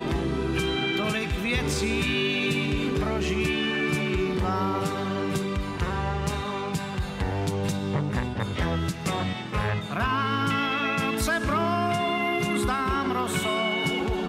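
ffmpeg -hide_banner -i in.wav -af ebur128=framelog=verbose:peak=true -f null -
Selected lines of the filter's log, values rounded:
Integrated loudness:
  I:         -26.3 LUFS
  Threshold: -36.3 LUFS
Loudness range:
  LRA:         3.4 LU
  Threshold: -46.5 LUFS
  LRA low:   -28.6 LUFS
  LRA high:  -25.2 LUFS
True peak:
  Peak:      -14.9 dBFS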